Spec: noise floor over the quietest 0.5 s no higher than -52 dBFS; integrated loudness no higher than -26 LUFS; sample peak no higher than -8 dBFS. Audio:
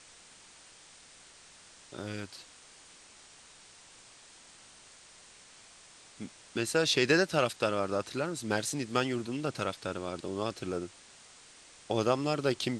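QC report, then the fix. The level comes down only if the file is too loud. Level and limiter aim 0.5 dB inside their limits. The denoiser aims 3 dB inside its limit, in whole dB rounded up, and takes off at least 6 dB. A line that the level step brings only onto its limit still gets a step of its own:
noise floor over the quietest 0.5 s -56 dBFS: OK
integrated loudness -31.5 LUFS: OK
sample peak -11.5 dBFS: OK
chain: none

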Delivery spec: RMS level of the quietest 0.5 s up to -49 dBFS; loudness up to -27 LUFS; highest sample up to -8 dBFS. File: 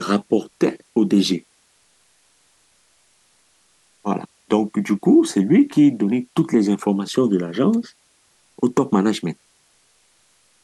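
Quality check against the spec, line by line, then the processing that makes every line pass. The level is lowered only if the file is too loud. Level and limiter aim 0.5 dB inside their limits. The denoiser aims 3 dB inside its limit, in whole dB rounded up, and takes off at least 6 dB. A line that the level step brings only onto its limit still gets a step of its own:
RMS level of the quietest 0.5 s -60 dBFS: OK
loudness -19.5 LUFS: fail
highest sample -6.0 dBFS: fail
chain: gain -8 dB

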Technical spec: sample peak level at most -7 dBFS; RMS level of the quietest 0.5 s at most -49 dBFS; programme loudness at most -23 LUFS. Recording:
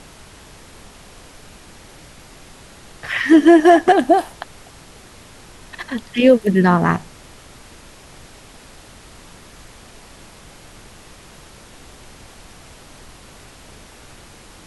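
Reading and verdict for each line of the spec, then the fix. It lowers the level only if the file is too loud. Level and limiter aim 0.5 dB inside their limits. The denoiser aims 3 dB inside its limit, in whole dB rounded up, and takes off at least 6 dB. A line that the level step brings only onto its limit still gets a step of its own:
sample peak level -1.5 dBFS: fail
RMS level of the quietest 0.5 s -43 dBFS: fail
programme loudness -14.5 LUFS: fail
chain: gain -9 dB

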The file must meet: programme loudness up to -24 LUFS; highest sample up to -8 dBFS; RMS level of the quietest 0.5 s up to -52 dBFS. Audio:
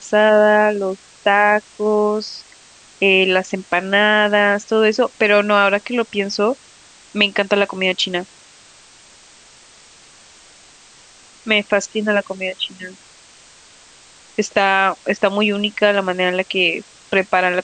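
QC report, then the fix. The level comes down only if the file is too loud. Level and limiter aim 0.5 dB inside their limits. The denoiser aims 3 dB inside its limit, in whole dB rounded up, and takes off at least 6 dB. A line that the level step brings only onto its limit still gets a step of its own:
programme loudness -16.5 LUFS: fail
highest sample -1.5 dBFS: fail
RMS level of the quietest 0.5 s -46 dBFS: fail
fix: gain -8 dB

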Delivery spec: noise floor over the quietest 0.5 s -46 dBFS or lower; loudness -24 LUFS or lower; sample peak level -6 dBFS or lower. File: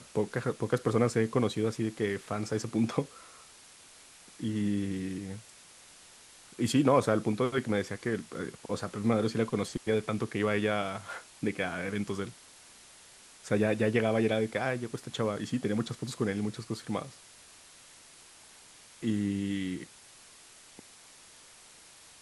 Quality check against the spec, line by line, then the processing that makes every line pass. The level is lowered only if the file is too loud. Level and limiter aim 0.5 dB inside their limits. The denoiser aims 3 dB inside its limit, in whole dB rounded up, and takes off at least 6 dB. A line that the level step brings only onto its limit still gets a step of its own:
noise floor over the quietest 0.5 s -55 dBFS: OK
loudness -31.5 LUFS: OK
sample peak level -11.5 dBFS: OK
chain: none

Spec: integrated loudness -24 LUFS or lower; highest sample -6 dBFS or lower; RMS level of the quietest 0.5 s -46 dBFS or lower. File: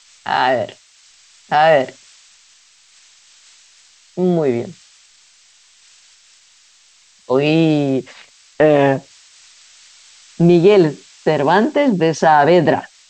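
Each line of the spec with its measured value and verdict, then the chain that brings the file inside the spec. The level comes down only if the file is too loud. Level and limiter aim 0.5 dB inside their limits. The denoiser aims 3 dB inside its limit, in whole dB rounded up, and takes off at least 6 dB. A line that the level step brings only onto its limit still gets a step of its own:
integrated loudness -15.0 LUFS: fail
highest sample -2.0 dBFS: fail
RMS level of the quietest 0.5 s -51 dBFS: OK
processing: gain -9.5 dB

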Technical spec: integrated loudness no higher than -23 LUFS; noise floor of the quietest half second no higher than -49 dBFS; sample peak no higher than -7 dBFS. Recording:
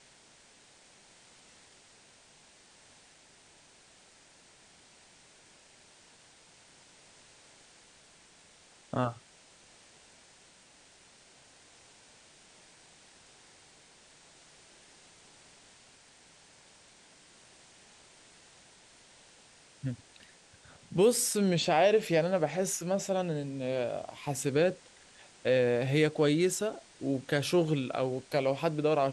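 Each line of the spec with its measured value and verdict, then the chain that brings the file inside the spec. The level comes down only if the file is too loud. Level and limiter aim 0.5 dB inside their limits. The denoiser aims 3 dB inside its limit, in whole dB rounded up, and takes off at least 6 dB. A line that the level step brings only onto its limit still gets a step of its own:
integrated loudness -29.5 LUFS: OK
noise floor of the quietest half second -60 dBFS: OK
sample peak -13.5 dBFS: OK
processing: none

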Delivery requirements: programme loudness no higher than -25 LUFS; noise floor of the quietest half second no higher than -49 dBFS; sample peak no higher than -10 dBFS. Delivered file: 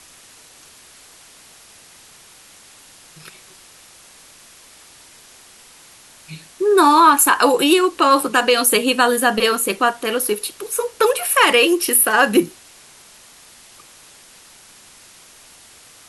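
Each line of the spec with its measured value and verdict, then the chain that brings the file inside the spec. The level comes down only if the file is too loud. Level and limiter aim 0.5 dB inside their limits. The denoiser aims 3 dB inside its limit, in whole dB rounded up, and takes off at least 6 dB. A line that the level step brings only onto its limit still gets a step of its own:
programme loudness -15.0 LUFS: fail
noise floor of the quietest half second -46 dBFS: fail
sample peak -2.0 dBFS: fail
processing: gain -10.5 dB

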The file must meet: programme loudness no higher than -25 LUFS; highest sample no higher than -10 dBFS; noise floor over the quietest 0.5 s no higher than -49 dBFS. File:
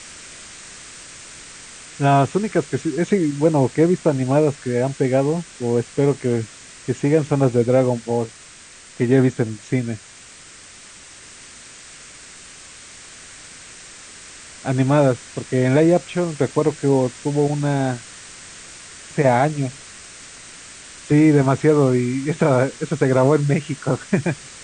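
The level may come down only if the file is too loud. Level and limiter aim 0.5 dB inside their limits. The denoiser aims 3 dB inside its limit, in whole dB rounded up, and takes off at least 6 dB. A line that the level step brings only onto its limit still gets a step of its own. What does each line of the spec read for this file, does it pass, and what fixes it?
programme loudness -19.5 LUFS: fail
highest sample -4.0 dBFS: fail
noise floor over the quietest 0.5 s -43 dBFS: fail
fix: denoiser 6 dB, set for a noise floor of -43 dBFS; gain -6 dB; limiter -10.5 dBFS

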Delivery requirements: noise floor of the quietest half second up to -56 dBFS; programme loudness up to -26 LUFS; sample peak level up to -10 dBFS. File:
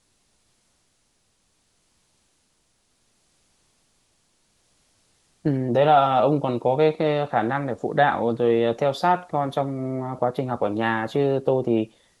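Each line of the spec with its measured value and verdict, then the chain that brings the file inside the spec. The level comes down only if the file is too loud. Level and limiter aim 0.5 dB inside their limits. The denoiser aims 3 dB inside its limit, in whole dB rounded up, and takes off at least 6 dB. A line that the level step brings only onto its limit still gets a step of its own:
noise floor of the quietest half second -67 dBFS: OK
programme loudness -22.5 LUFS: fail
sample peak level -4.5 dBFS: fail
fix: gain -4 dB; limiter -10.5 dBFS

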